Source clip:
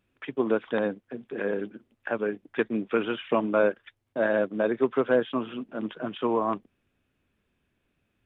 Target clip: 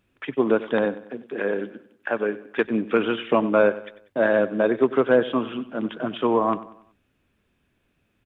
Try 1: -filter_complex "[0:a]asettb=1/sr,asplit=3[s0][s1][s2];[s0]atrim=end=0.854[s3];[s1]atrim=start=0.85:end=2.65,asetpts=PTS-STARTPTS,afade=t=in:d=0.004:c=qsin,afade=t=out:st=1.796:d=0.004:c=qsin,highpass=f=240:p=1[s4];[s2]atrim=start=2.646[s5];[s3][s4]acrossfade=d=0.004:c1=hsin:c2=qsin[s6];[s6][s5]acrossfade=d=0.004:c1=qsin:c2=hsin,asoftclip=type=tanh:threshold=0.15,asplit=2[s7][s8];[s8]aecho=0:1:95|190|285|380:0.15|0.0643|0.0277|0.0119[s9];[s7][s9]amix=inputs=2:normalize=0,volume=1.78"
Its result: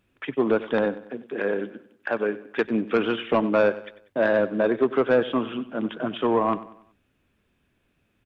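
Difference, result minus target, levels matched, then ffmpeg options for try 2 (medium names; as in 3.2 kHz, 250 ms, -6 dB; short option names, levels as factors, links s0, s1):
saturation: distortion +16 dB
-filter_complex "[0:a]asettb=1/sr,asplit=3[s0][s1][s2];[s0]atrim=end=0.854[s3];[s1]atrim=start=0.85:end=2.65,asetpts=PTS-STARTPTS,afade=t=in:d=0.004:c=qsin,afade=t=out:st=1.796:d=0.004:c=qsin,highpass=f=240:p=1[s4];[s2]atrim=start=2.646[s5];[s3][s4]acrossfade=d=0.004:c1=hsin:c2=qsin[s6];[s6][s5]acrossfade=d=0.004:c1=qsin:c2=hsin,asoftclip=type=tanh:threshold=0.447,asplit=2[s7][s8];[s8]aecho=0:1:95|190|285|380:0.15|0.0643|0.0277|0.0119[s9];[s7][s9]amix=inputs=2:normalize=0,volume=1.78"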